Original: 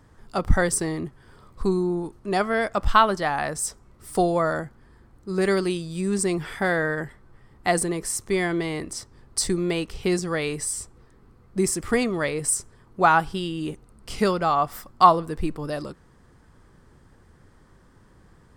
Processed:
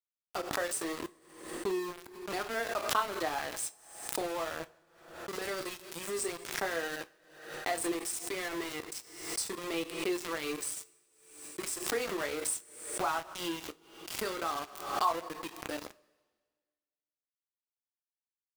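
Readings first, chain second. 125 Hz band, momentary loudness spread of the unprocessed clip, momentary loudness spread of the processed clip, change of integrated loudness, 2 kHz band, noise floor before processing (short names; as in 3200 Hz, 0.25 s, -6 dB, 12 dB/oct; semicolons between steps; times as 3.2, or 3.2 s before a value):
-23.0 dB, 13 LU, 12 LU, -11.5 dB, -10.0 dB, -55 dBFS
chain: Chebyshev high-pass 320 Hz, order 3; compressor 2:1, threshold -30 dBFS, peak gain reduction 11.5 dB; early reflections 12 ms -14.5 dB, 30 ms -9.5 dB; flange 0.72 Hz, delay 3.2 ms, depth 4.5 ms, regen +33%; sample gate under -34.5 dBFS; two-slope reverb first 0.23 s, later 1.6 s, from -19 dB, DRR 11.5 dB; backwards sustainer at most 73 dB/s; gain -1.5 dB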